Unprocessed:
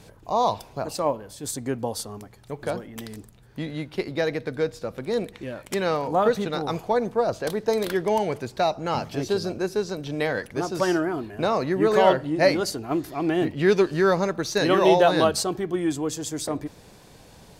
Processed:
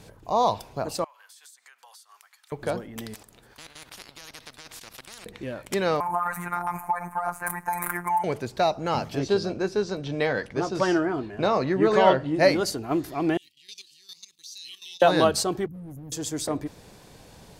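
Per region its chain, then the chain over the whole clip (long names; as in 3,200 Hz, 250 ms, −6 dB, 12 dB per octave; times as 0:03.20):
0:01.04–0:02.52: high-pass filter 1,200 Hz 24 dB per octave + downward compressor 20 to 1, threshold −47 dBFS
0:03.14–0:05.26: output level in coarse steps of 16 dB + every bin compressed towards the loudest bin 10 to 1
0:06.00–0:08.24: drawn EQ curve 110 Hz 0 dB, 520 Hz −16 dB, 890 Hz +14 dB, 2,300 Hz +5 dB, 3,300 Hz −20 dB, 4,900 Hz −16 dB, 9,400 Hz +14 dB + downward compressor 5 to 1, threshold −20 dBFS + phases set to zero 175 Hz
0:09.19–0:12.34: low-pass filter 6,300 Hz + double-tracking delay 15 ms −12 dB
0:13.37–0:15.02: inverse Chebyshev high-pass filter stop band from 1,600 Hz + output level in coarse steps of 14 dB
0:15.66–0:16.12: inverse Chebyshev band-stop filter 730–4,500 Hz, stop band 50 dB + phaser with its sweep stopped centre 1,800 Hz, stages 8 + hard clipping −37 dBFS
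whole clip: no processing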